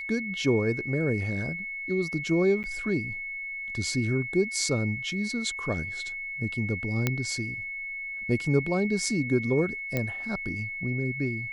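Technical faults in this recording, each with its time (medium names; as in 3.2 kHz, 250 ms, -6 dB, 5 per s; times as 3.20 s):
whine 2.2 kHz -33 dBFS
2.63–2.64 s: dropout 8.9 ms
7.07 s: pop -10 dBFS
9.97 s: pop -14 dBFS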